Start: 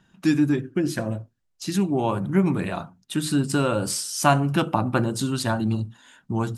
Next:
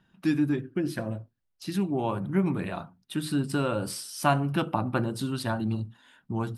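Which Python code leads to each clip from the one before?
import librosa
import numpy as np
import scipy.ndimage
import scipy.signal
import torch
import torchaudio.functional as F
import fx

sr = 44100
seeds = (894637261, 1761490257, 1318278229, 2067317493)

y = fx.peak_eq(x, sr, hz=6900.0, db=-10.5, octaves=0.54)
y = y * librosa.db_to_amplitude(-5.0)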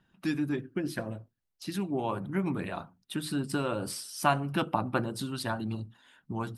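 y = fx.hpss(x, sr, part='harmonic', gain_db=-6)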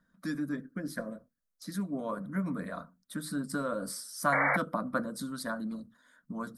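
y = fx.fixed_phaser(x, sr, hz=550.0, stages=8)
y = fx.spec_paint(y, sr, seeds[0], shape='noise', start_s=4.32, length_s=0.25, low_hz=470.0, high_hz=2300.0, level_db=-27.0)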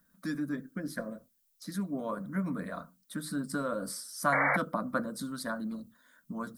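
y = fx.dmg_noise_colour(x, sr, seeds[1], colour='violet', level_db=-73.0)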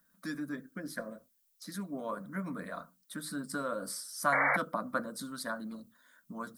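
y = fx.low_shelf(x, sr, hz=320.0, db=-8.0)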